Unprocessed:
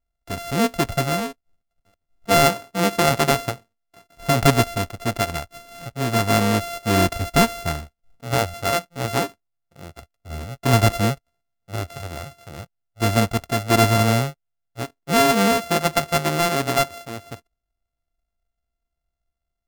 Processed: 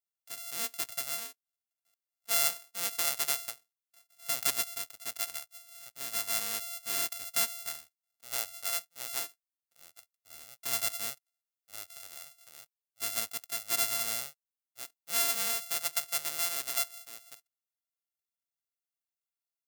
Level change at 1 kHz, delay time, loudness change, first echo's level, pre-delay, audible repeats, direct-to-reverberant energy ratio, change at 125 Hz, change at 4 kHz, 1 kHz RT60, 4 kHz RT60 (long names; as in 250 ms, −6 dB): −21.0 dB, no echo audible, −10.5 dB, no echo audible, no reverb audible, no echo audible, no reverb audible, −39.0 dB, −9.0 dB, no reverb audible, no reverb audible